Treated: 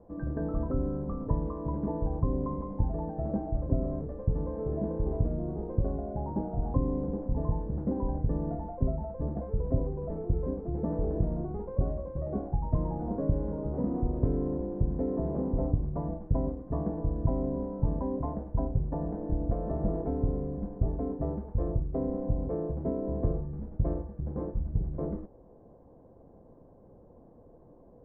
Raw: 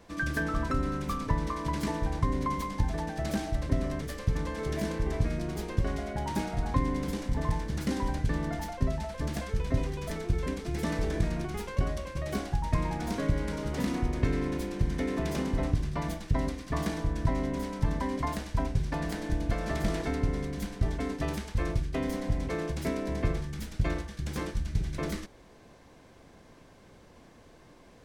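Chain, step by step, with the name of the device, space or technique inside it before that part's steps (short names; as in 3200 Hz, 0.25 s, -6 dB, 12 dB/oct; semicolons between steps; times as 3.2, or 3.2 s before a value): 5.86–6.9 high shelf 3300 Hz -10 dB; under water (LPF 820 Hz 24 dB/oct; bell 500 Hz +5 dB 0.22 oct)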